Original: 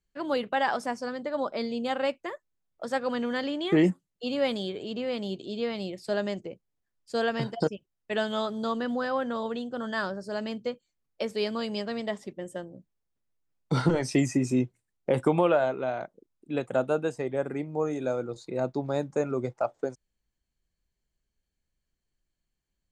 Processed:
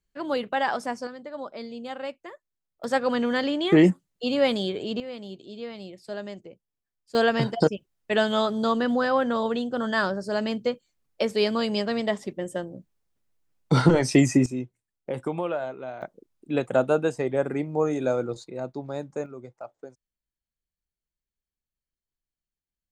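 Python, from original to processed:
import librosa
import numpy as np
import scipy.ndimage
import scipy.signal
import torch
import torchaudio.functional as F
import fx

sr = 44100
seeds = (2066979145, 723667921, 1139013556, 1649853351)

y = fx.gain(x, sr, db=fx.steps((0.0, 1.0), (1.07, -6.0), (2.84, 5.0), (5.0, -6.0), (7.15, 6.0), (14.46, -6.0), (16.02, 4.5), (18.44, -4.0), (19.26, -11.5)))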